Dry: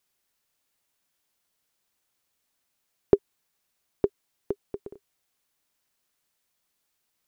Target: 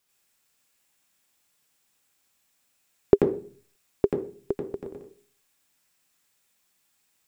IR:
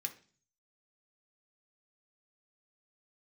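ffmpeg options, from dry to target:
-filter_complex "[0:a]asplit=2[a][b];[1:a]atrim=start_sample=2205,adelay=86[c];[b][c]afir=irnorm=-1:irlink=0,volume=3dB[d];[a][d]amix=inputs=2:normalize=0,volume=2dB"

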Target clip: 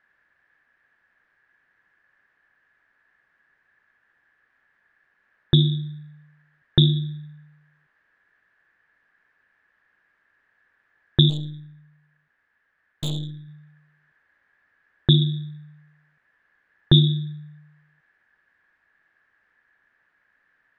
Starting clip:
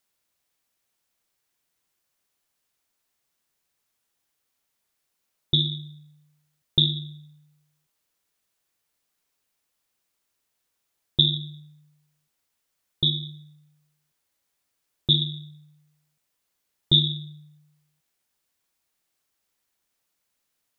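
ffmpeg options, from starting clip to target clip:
-filter_complex "[0:a]lowpass=f=1.7k:t=q:w=13,asplit=3[a][b][c];[a]afade=t=out:st=11.29:d=0.02[d];[b]aeval=exprs='(tanh(44.7*val(0)+0.65)-tanh(0.65))/44.7':c=same,afade=t=in:st=11.29:d=0.02,afade=t=out:st=13.47:d=0.02[e];[c]afade=t=in:st=13.47:d=0.02[f];[d][e][f]amix=inputs=3:normalize=0,volume=9dB"

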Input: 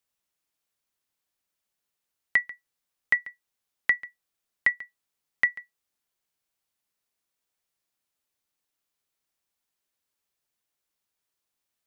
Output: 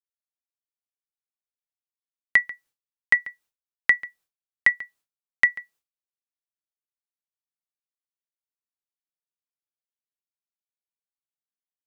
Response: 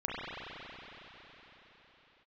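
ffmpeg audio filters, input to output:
-af "agate=range=-33dB:threshold=-57dB:ratio=3:detection=peak,volume=4.5dB"

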